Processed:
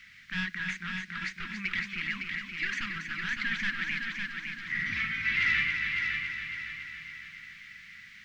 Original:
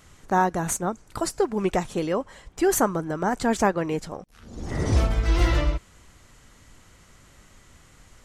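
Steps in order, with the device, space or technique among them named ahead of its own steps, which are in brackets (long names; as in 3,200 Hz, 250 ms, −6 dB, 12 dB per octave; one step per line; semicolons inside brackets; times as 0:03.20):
drive-through speaker (band-pass filter 520–3,600 Hz; parametric band 2,200 Hz +10.5 dB 0.58 octaves; hard clipping −22.5 dBFS, distortion −7 dB; white noise bed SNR 21 dB)
0:00.82–0:01.29: low-pass filter 10,000 Hz
Chebyshev band-stop filter 200–1,700 Hz, order 3
high-frequency loss of the air 220 metres
echo machine with several playback heads 279 ms, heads first and second, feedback 54%, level −7 dB
level +5 dB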